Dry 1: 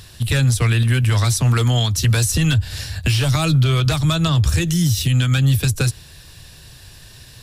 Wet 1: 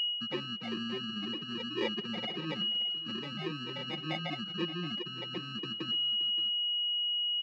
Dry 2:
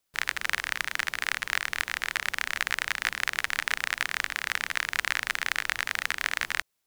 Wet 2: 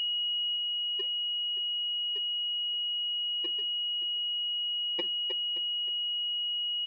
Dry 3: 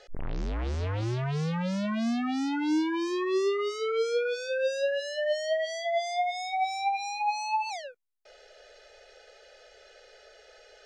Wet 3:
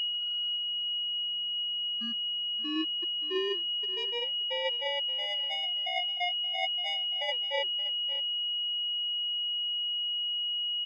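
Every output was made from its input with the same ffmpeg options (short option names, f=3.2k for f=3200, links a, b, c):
-filter_complex "[0:a]acrossover=split=940[a][b];[a]aeval=exprs='max(val(0),0)':c=same[c];[c][b]amix=inputs=2:normalize=0,afftfilt=real='re*gte(hypot(re,im),0.251)':imag='im*gte(hypot(re,im),0.251)':win_size=1024:overlap=0.75,flanger=delay=3:depth=7:regen=-83:speed=0.64:shape=triangular,acrusher=samples=31:mix=1:aa=0.000001,acontrast=40,aeval=exprs='val(0)+0.0398*sin(2*PI*2900*n/s)':c=same,aecho=1:1:5.6:0.72,adynamicequalizer=threshold=0.00501:dfrequency=1100:dqfactor=2.4:tfrequency=1100:tqfactor=2.4:attack=5:release=100:ratio=0.375:range=2.5:mode=cutabove:tftype=bell,areverse,acompressor=threshold=-24dB:ratio=10,areverse,highpass=f=240:w=0.5412,highpass=f=240:w=1.3066,equalizer=f=250:t=q:w=4:g=-3,equalizer=f=630:t=q:w=4:g=-9,equalizer=f=930:t=q:w=4:g=-4,equalizer=f=1.5k:t=q:w=4:g=-7,equalizer=f=2.2k:t=q:w=4:g=4,equalizer=f=3.1k:t=q:w=4:g=-8,lowpass=f=3.9k:w=0.5412,lowpass=f=3.9k:w=1.3066,aecho=1:1:574:0.15,volume=3.5dB"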